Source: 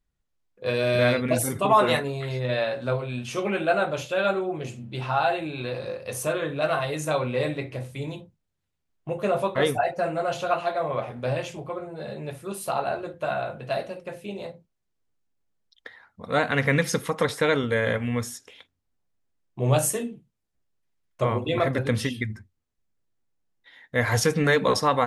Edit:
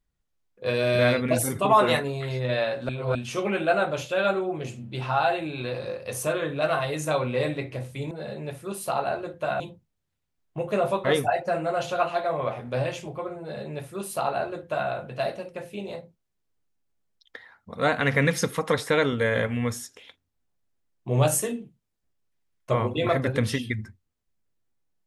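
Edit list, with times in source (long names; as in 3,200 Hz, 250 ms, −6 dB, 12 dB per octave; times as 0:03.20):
0:02.89–0:03.15: reverse
0:11.91–0:13.40: duplicate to 0:08.11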